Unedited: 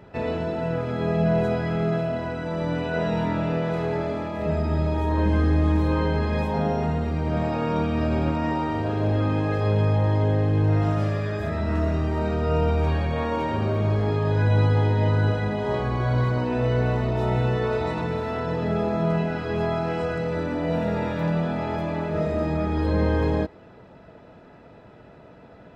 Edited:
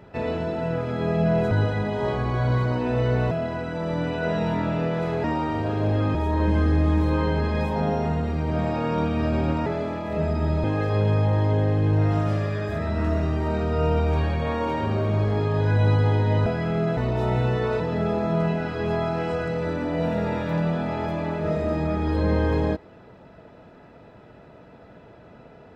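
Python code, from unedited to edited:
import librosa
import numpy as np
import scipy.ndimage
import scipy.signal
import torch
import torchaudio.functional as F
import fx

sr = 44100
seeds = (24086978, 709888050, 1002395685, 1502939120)

y = fx.edit(x, sr, fx.swap(start_s=1.51, length_s=0.51, other_s=15.17, other_length_s=1.8),
    fx.swap(start_s=3.95, length_s=0.98, other_s=8.44, other_length_s=0.91),
    fx.cut(start_s=17.8, length_s=0.7), tone=tone)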